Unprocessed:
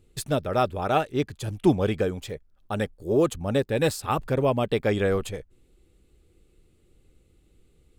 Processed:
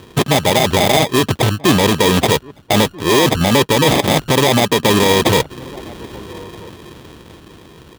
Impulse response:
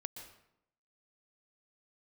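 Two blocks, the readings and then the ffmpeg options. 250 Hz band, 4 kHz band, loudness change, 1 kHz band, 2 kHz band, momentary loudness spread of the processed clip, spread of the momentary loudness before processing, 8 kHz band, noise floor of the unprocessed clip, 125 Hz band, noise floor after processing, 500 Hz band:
+11.5 dB, +22.0 dB, +12.0 dB, +12.5 dB, +16.5 dB, 19 LU, 10 LU, +19.5 dB, −63 dBFS, +11.5 dB, −43 dBFS, +9.5 dB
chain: -filter_complex "[0:a]dynaudnorm=framelen=210:gausssize=17:maxgain=11.5dB,acrusher=samples=31:mix=1:aa=0.000001,areverse,acompressor=threshold=-28dB:ratio=6,areverse,equalizer=frequency=3400:width_type=o:width=0.46:gain=7.5,asplit=2[link_01][link_02];[link_02]adelay=1283,volume=-29dB,highshelf=frequency=4000:gain=-28.9[link_03];[link_01][link_03]amix=inputs=2:normalize=0,asplit=2[link_04][link_05];[link_05]aeval=exprs='(mod(26.6*val(0)+1,2)-1)/26.6':channel_layout=same,volume=-5dB[link_06];[link_04][link_06]amix=inputs=2:normalize=0,highpass=120,alimiter=level_in=22dB:limit=-1dB:release=50:level=0:latency=1,volume=-1dB"

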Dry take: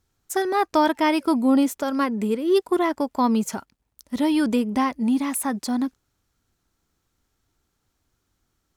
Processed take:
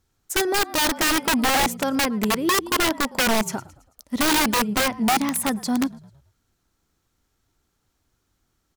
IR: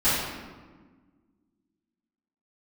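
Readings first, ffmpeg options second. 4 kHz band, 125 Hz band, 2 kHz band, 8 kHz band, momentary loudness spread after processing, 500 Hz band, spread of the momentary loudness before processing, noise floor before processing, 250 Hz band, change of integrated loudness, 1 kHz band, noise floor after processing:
+11.0 dB, can't be measured, +8.5 dB, +9.5 dB, 6 LU, −2.5 dB, 7 LU, −75 dBFS, −3.0 dB, +1.0 dB, +1.0 dB, −73 dBFS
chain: -filter_complex "[0:a]asplit=5[link_01][link_02][link_03][link_04][link_05];[link_02]adelay=110,afreqshift=-44,volume=-20dB[link_06];[link_03]adelay=220,afreqshift=-88,volume=-26.6dB[link_07];[link_04]adelay=330,afreqshift=-132,volume=-33.1dB[link_08];[link_05]adelay=440,afreqshift=-176,volume=-39.7dB[link_09];[link_01][link_06][link_07][link_08][link_09]amix=inputs=5:normalize=0,aeval=exprs='(mod(6.68*val(0)+1,2)-1)/6.68':channel_layout=same,volume=1.5dB"

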